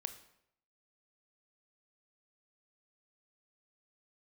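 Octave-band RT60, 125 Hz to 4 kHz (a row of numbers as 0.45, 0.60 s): 0.80, 0.70, 0.80, 0.70, 0.65, 0.60 s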